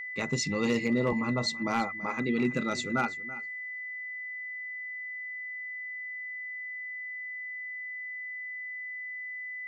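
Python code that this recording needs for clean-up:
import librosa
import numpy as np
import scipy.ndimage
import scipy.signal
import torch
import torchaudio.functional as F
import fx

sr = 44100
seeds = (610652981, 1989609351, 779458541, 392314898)

y = fx.fix_declip(x, sr, threshold_db=-19.0)
y = fx.notch(y, sr, hz=2000.0, q=30.0)
y = fx.fix_echo_inverse(y, sr, delay_ms=331, level_db=-17.0)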